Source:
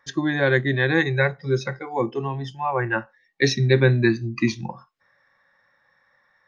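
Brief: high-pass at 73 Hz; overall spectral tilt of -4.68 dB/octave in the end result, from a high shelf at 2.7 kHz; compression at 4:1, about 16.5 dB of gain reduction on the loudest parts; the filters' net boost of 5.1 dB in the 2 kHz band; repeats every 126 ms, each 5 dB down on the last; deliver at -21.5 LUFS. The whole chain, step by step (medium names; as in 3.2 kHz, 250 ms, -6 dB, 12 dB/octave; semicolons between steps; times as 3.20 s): high-pass 73 Hz; peaking EQ 2 kHz +8.5 dB; treble shelf 2.7 kHz -6 dB; compression 4:1, threshold -32 dBFS; feedback delay 126 ms, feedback 56%, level -5 dB; trim +11 dB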